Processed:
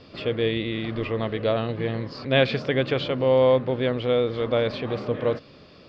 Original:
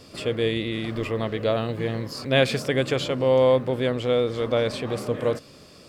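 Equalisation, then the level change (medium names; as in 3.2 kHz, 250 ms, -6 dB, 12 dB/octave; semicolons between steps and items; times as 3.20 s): inverse Chebyshev low-pass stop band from 9.7 kHz, stop band 50 dB; 0.0 dB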